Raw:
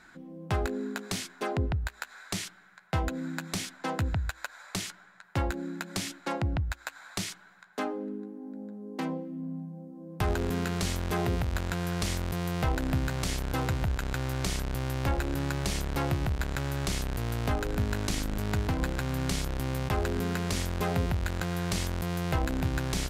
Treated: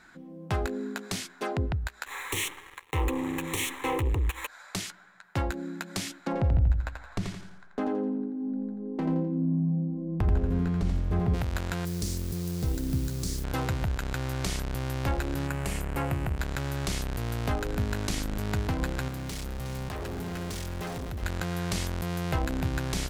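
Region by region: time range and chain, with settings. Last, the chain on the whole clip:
2.06–4.47 s: compression 1.5:1, threshold -41 dBFS + waveshaping leveller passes 5 + static phaser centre 990 Hz, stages 8
6.27–11.34 s: tilt EQ -4 dB/octave + compression 2.5:1, threshold -26 dBFS + feedback delay 85 ms, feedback 40%, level -5.5 dB
11.85–13.44 s: high-order bell 1.4 kHz -16 dB 2.8 oct + word length cut 8-bit, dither triangular
15.47–16.38 s: high-order bell 4.6 kHz -9 dB 1.1 oct + hum notches 50/100/150/200/250/300/350 Hz
19.08–21.23 s: overload inside the chain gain 33.5 dB + delay 364 ms -10 dB
whole clip: none

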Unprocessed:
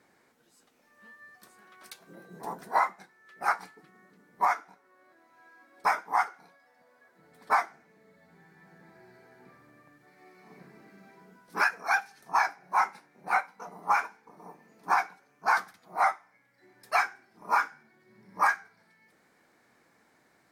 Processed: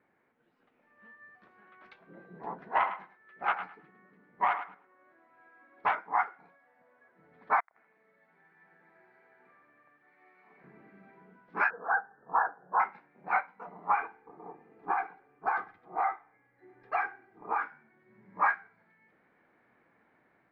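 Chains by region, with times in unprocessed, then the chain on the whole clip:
2.61–5.95 s: self-modulated delay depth 0.091 ms + thinning echo 105 ms, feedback 18%, high-pass 440 Hz, level -10 dB
7.60–10.64 s: high-pass 910 Hz 6 dB/octave + inverted gate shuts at -32 dBFS, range -37 dB + two-band feedback delay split 750 Hz, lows 109 ms, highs 81 ms, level -12.5 dB
11.70–12.80 s: steep low-pass 1.7 kHz 96 dB/octave + peaking EQ 480 Hz +12 dB 0.26 oct
13.94–17.62 s: tilt shelf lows +4 dB, about 1.4 kHz + compression, threshold -24 dBFS + comb 2.5 ms, depth 53%
whole clip: low-pass 2.6 kHz 24 dB/octave; level rider gain up to 5 dB; trim -7 dB

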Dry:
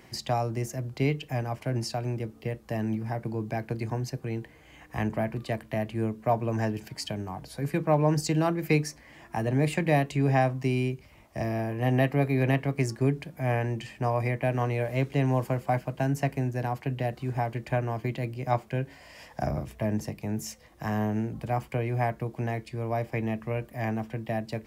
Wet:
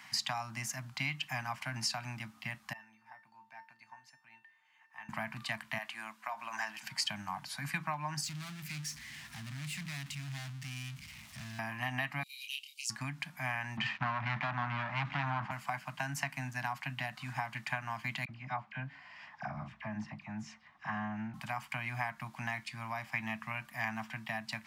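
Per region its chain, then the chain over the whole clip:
2.73–5.09 s: tone controls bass -14 dB, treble -8 dB + feedback comb 900 Hz, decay 0.28 s, mix 90%
5.78–6.83 s: high-pass 510 Hz + compression 4:1, threshold -31 dBFS
8.24–11.59 s: power-law waveshaper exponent 0.35 + amplifier tone stack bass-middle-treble 10-0-1
12.23–12.90 s: steep high-pass 2.8 kHz 72 dB/octave + doubling 28 ms -4 dB
13.77–15.51 s: waveshaping leveller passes 5 + tape spacing loss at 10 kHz 41 dB + three bands expanded up and down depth 100%
18.25–21.34 s: tape spacing loss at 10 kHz 31 dB + band-stop 950 Hz, Q 30 + phase dispersion lows, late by 40 ms, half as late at 1.6 kHz
whole clip: frequency weighting A; compression 5:1, threshold -32 dBFS; Chebyshev band-stop 190–1000 Hz, order 2; trim +4.5 dB

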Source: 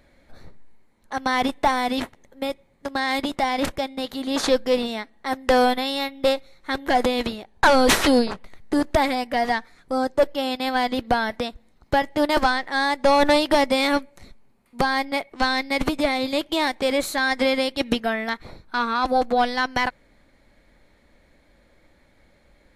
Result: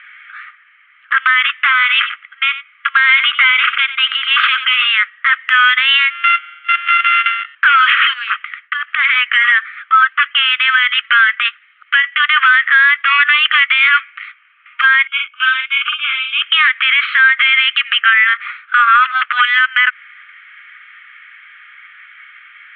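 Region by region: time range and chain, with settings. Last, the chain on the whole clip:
1.67–4.88 s: band-stop 1.8 kHz, Q 9.5 + delay 92 ms -15 dB
6.10–7.55 s: sorted samples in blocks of 64 samples + treble shelf 3.3 kHz +6.5 dB + feedback comb 140 Hz, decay 1.5 s, mix 50%
8.13–9.05 s: hum notches 60/120/180/240/300/360/420/480/540/600 Hz + gate with hold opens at -34 dBFS, closes at -38 dBFS + compression 8:1, threshold -26 dBFS
10.70–13.98 s: high-pass 930 Hz 6 dB/octave + tremolo saw down 12 Hz, depth 40%
15.07–16.42 s: differentiator + static phaser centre 2.9 kHz, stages 8 + doubling 47 ms -3 dB
whole clip: Chebyshev band-pass 1.2–3.2 kHz, order 5; compression 12:1, threshold -29 dBFS; loudness maximiser +28.5 dB; trim -1 dB

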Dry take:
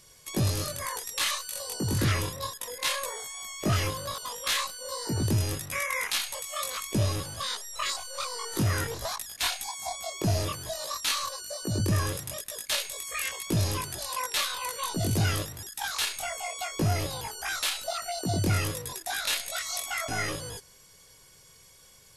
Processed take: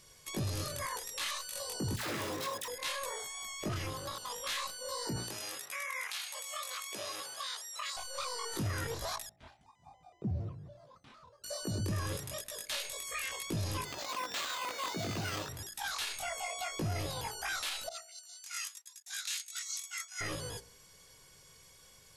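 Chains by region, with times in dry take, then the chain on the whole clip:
1.96–2.68 s: square wave that keeps the level + high-pass 290 Hz + phase dispersion lows, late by 118 ms, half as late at 700 Hz
3.68–4.30 s: AM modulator 240 Hz, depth 50% + tape noise reduction on one side only encoder only
5.16–7.97 s: high-pass 690 Hz + band-stop 950 Hz, Q 24 + compression 4:1, threshold -33 dBFS
9.29–11.44 s: band-pass filter 140 Hz, Q 1.5 + vibrato with a chosen wave square 5.4 Hz, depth 160 cents
13.85–15.49 s: careless resampling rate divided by 4×, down none, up hold + high-pass 250 Hz 6 dB/octave
17.89–20.21 s: Bessel high-pass 1.8 kHz, order 6 + expander -30 dBFS + peaking EQ 6.8 kHz +10 dB 0.72 oct
whole clip: treble shelf 8.3 kHz -5 dB; de-hum 59.34 Hz, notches 15; peak limiter -26 dBFS; trim -2 dB

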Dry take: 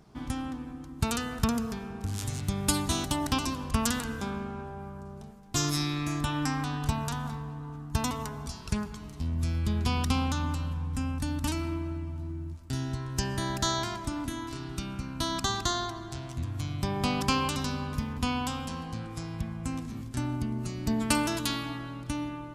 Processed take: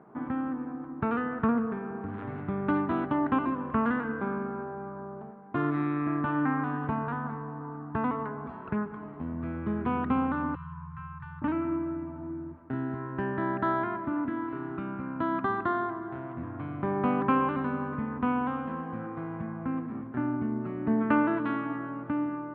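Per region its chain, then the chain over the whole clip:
10.55–11.42 s: Chebyshev band-stop 170–960 Hz, order 5 + peaking EQ 1.8 kHz -6 dB 1.5 oct
whole clip: inverse Chebyshev low-pass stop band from 5.2 kHz, stop band 60 dB; dynamic bell 780 Hz, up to -6 dB, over -48 dBFS, Q 1.3; high-pass 260 Hz 12 dB/octave; trim +7.5 dB

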